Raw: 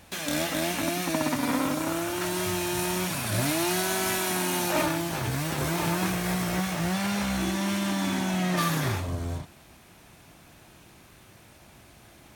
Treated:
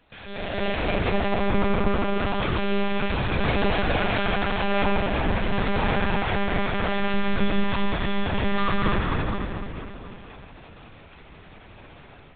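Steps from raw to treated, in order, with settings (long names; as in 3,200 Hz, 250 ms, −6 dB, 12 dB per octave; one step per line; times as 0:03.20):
automatic gain control gain up to 12 dB
spring reverb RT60 3.2 s, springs 31/40/49 ms, chirp 65 ms, DRR −2 dB
one-pitch LPC vocoder at 8 kHz 200 Hz
level −9 dB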